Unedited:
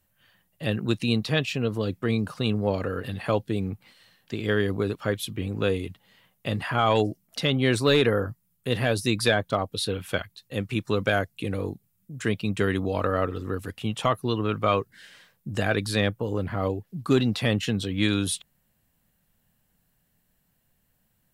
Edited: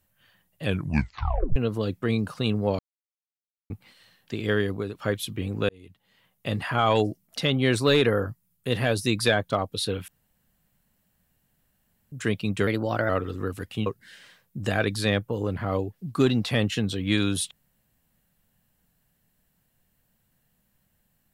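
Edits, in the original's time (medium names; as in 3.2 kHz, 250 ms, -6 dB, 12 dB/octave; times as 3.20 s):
0.63 s: tape stop 0.93 s
2.79–3.70 s: mute
4.56–4.95 s: fade out, to -8 dB
5.69–6.53 s: fade in
10.08–12.12 s: room tone
12.67–13.16 s: speed 116%
13.93–14.77 s: delete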